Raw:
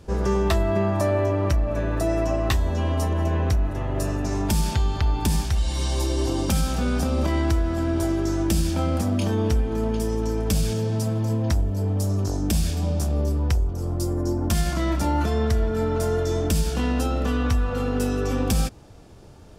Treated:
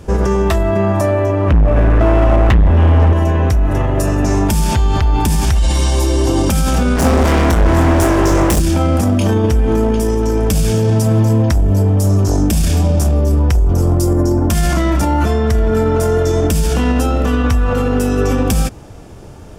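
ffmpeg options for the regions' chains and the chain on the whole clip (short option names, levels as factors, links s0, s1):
-filter_complex "[0:a]asettb=1/sr,asplit=3[s0][s1][s2];[s0]atrim=end=1.484[s3];[s1]atrim=start=1.48:end=3.13,asetpts=PTS-STARTPTS,afade=t=in:d=0.004:c=qsin,afade=t=out:st=1.646:d=0.004:c=qsin,lowpass=f=3100:w=0.5412,lowpass=f=3100:w=1.3066,lowshelf=f=99:g=8,volume=8.91,asoftclip=hard,volume=0.112[s4];[s2]atrim=start=3.126[s5];[s3][s4]acrossfade=d=0.004:c1=hsin:c2=qsin[s6];[s6][s5]acrossfade=d=0.004:c1=qsin:c2=hsin,asettb=1/sr,asplit=3[s7][s8][s9];[s7]atrim=end=6.964[s10];[s8]atrim=start=6.96:end=8.6,asetpts=PTS-STARTPTS,afade=t=in:d=0.004:c=qsin,afade=t=out:st=1.636:d=0.004:c=qsin,volume=26.6,asoftclip=hard,volume=0.0376,asplit=2[s11][s12];[s12]adelay=23,volume=0.447[s13];[s11][s13]amix=inputs=2:normalize=0,atrim=end_sample=72324[s14];[s9]atrim=start=8.596[s15];[s10][s14]acrossfade=d=0.004:c1=hsin:c2=qsin[s16];[s16][s15]acrossfade=d=0.004:c1=qsin:c2=hsin,dynaudnorm=f=440:g=21:m=3.76,equalizer=f=4200:t=o:w=0.52:g=-6,alimiter=level_in=7.08:limit=0.891:release=50:level=0:latency=1,volume=0.531"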